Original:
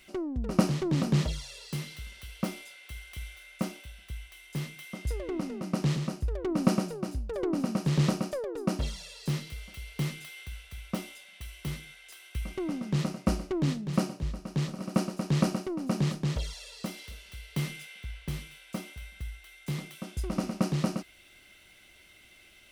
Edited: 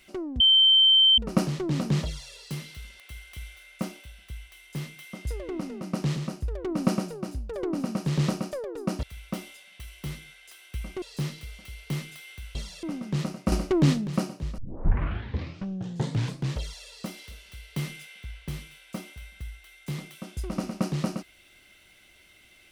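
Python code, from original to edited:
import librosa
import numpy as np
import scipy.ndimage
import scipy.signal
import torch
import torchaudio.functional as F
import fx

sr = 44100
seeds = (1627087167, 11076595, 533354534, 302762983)

y = fx.edit(x, sr, fx.insert_tone(at_s=0.4, length_s=0.78, hz=3110.0, db=-14.5),
    fx.cut(start_s=2.22, length_s=0.58),
    fx.swap(start_s=8.83, length_s=0.28, other_s=10.64, other_length_s=1.99),
    fx.clip_gain(start_s=13.32, length_s=0.55, db=7.5),
    fx.tape_start(start_s=14.38, length_s=2.05), tone=tone)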